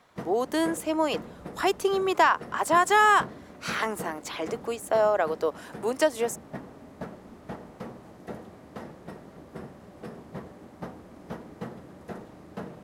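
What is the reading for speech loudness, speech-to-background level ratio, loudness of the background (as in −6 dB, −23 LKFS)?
−25.5 LKFS, 17.5 dB, −43.0 LKFS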